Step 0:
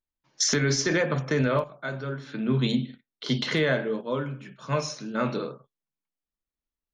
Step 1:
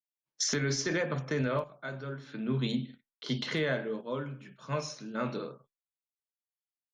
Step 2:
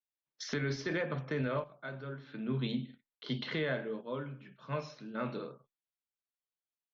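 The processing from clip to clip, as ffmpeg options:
ffmpeg -i in.wav -af "agate=range=-33dB:threshold=-53dB:ratio=3:detection=peak,volume=-6.5dB" out.wav
ffmpeg -i in.wav -af "lowpass=frequency=4300:width=0.5412,lowpass=frequency=4300:width=1.3066,volume=-3.5dB" out.wav

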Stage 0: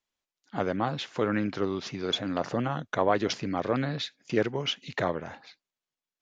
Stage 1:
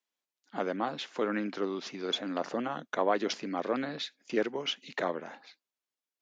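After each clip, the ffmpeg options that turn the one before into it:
ffmpeg -i in.wav -af "highpass=frequency=210:width=0.5412,highpass=frequency=210:width=1.3066,volume=-3dB" out.wav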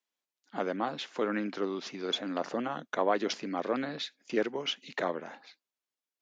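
ffmpeg -i in.wav -af anull out.wav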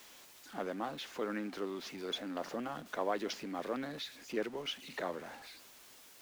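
ffmpeg -i in.wav -af "aeval=exprs='val(0)+0.5*0.00891*sgn(val(0))':channel_layout=same,volume=-7.5dB" out.wav

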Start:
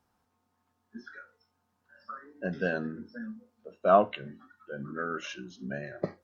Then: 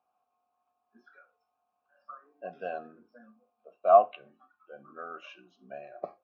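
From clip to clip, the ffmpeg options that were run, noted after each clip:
ffmpeg -i in.wav -filter_complex "[0:a]asplit=3[link_01][link_02][link_03];[link_01]bandpass=frequency=730:width_type=q:width=8,volume=0dB[link_04];[link_02]bandpass=frequency=1090:width_type=q:width=8,volume=-6dB[link_05];[link_03]bandpass=frequency=2440:width_type=q:width=8,volume=-9dB[link_06];[link_04][link_05][link_06]amix=inputs=3:normalize=0,volume=6.5dB" out.wav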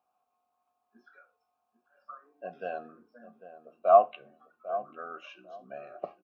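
ffmpeg -i in.wav -filter_complex "[0:a]asplit=2[link_01][link_02];[link_02]adelay=797,lowpass=frequency=890:poles=1,volume=-12dB,asplit=2[link_03][link_04];[link_04]adelay=797,lowpass=frequency=890:poles=1,volume=0.24,asplit=2[link_05][link_06];[link_06]adelay=797,lowpass=frequency=890:poles=1,volume=0.24[link_07];[link_01][link_03][link_05][link_07]amix=inputs=4:normalize=0" out.wav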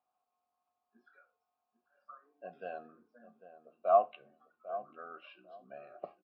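ffmpeg -i in.wav -af "aresample=11025,aresample=44100,volume=-6.5dB" out.wav

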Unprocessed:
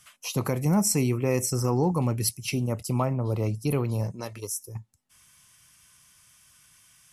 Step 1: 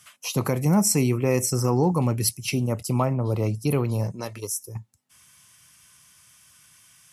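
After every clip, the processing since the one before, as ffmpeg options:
ffmpeg -i in.wav -af "highpass=72,volume=3dB" out.wav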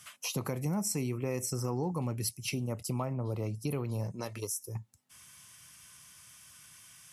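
ffmpeg -i in.wav -af "acompressor=threshold=-36dB:ratio=2.5" out.wav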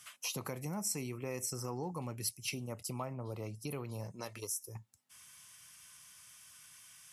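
ffmpeg -i in.wav -af "lowshelf=frequency=500:gain=-7,volume=-2dB" out.wav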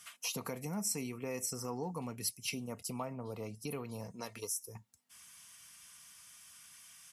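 ffmpeg -i in.wav -af "aecho=1:1:4.3:0.4" out.wav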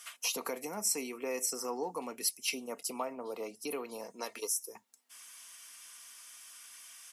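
ffmpeg -i in.wav -af "highpass=frequency=290:width=0.5412,highpass=frequency=290:width=1.3066,volume=4.5dB" out.wav

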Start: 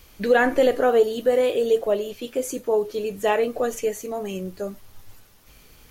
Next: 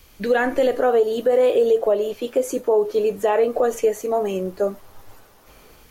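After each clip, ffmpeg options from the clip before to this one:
ffmpeg -i in.wav -filter_complex "[0:a]acrossover=split=330|1400|2400[link_01][link_02][link_03][link_04];[link_02]dynaudnorm=framelen=570:gausssize=3:maxgain=11dB[link_05];[link_01][link_05][link_03][link_04]amix=inputs=4:normalize=0,alimiter=limit=-10dB:level=0:latency=1:release=119" out.wav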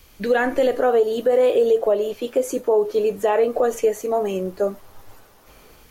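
ffmpeg -i in.wav -af anull out.wav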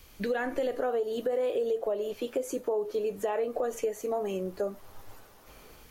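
ffmpeg -i in.wav -af "acompressor=threshold=-27dB:ratio=2.5,volume=-3.5dB" out.wav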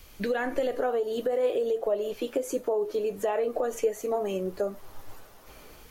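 ffmpeg -i in.wav -af "flanger=delay=1.4:depth=2.1:regen=80:speed=1.5:shape=sinusoidal,volume=7dB" out.wav

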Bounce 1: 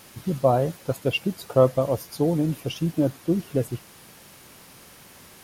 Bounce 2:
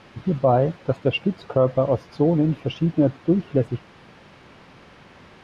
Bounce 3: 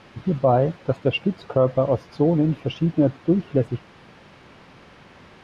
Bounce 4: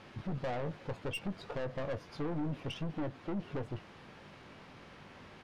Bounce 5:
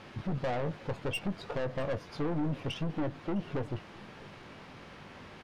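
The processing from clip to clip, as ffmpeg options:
ffmpeg -i in.wav -af "lowpass=3500,aemphasis=mode=reproduction:type=cd,alimiter=level_in=9.5dB:limit=-1dB:release=50:level=0:latency=1,volume=-6dB" out.wav
ffmpeg -i in.wav -af anull out.wav
ffmpeg -i in.wav -filter_complex "[0:a]acompressor=threshold=-20dB:ratio=4,aeval=exprs='(tanh(28.2*val(0)+0.3)-tanh(0.3))/28.2':channel_layout=same,asplit=2[link_01][link_02];[link_02]adelay=20,volume=-11.5dB[link_03];[link_01][link_03]amix=inputs=2:normalize=0,volume=-5dB" out.wav
ffmpeg -i in.wav -af "aecho=1:1:657:0.075,volume=4dB" out.wav

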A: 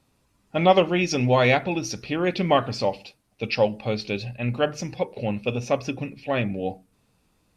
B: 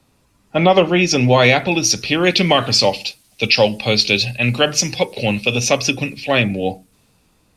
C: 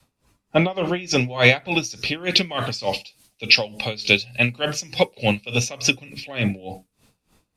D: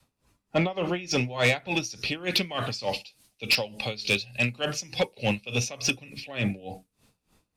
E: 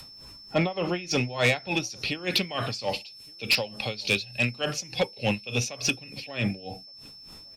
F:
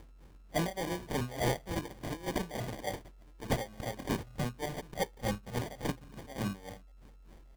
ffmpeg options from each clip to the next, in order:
ffmpeg -i in.wav -filter_complex "[0:a]acrossover=split=150|360|2700[link_01][link_02][link_03][link_04];[link_04]dynaudnorm=framelen=510:gausssize=7:maxgain=16.5dB[link_05];[link_01][link_02][link_03][link_05]amix=inputs=4:normalize=0,alimiter=level_in=8.5dB:limit=-1dB:release=50:level=0:latency=1,volume=-1dB" out.wav
ffmpeg -i in.wav -af "adynamicequalizer=threshold=0.0398:dfrequency=280:dqfactor=0.89:tfrequency=280:tqfactor=0.89:attack=5:release=100:ratio=0.375:range=2.5:mode=cutabove:tftype=bell,aeval=exprs='val(0)*pow(10,-21*(0.5-0.5*cos(2*PI*3.4*n/s))/20)':channel_layout=same,volume=1dB" out.wav
ffmpeg -i in.wav -af "asoftclip=type=tanh:threshold=-10.5dB,volume=-4.5dB" out.wav
ffmpeg -i in.wav -filter_complex "[0:a]acompressor=mode=upward:threshold=-38dB:ratio=2.5,aeval=exprs='val(0)+0.00562*sin(2*PI*5300*n/s)':channel_layout=same,asplit=2[link_01][link_02];[link_02]adelay=1166,volume=-26dB,highshelf=frequency=4000:gain=-26.2[link_03];[link_01][link_03]amix=inputs=2:normalize=0" out.wav
ffmpeg -i in.wav -af "acrusher=samples=33:mix=1:aa=0.000001,volume=-7.5dB" out.wav

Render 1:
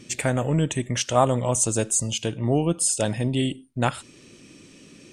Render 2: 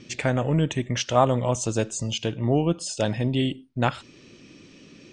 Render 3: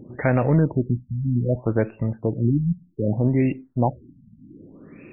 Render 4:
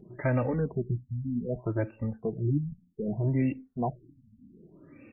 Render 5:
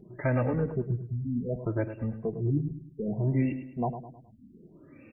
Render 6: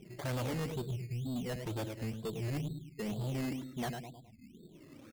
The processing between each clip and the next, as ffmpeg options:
ffmpeg -i in.wav -af "lowpass=frequency=5800:width=0.5412,lowpass=frequency=5800:width=1.3066" out.wav
ffmpeg -i in.wav -filter_complex "[0:a]asplit=2[link_01][link_02];[link_02]alimiter=limit=-15dB:level=0:latency=1,volume=-2dB[link_03];[link_01][link_03]amix=inputs=2:normalize=0,afftfilt=real='re*lt(b*sr/1024,240*pow(2800/240,0.5+0.5*sin(2*PI*0.64*pts/sr)))':imag='im*lt(b*sr/1024,240*pow(2800/240,0.5+0.5*sin(2*PI*0.64*pts/sr)))':win_size=1024:overlap=0.75" out.wav
ffmpeg -i in.wav -filter_complex "[0:a]asplit=2[link_01][link_02];[link_02]adelay=2.4,afreqshift=-1.3[link_03];[link_01][link_03]amix=inputs=2:normalize=1,volume=-5dB" out.wav
ffmpeg -i in.wav -af "aecho=1:1:105|210|315|420:0.299|0.122|0.0502|0.0206" out.wav
ffmpeg -i in.wav -af "aresample=8000,asoftclip=type=tanh:threshold=-31dB,aresample=44100,acrusher=samples=15:mix=1:aa=0.000001:lfo=1:lforange=9:lforate=2.1,volume=-2dB" out.wav

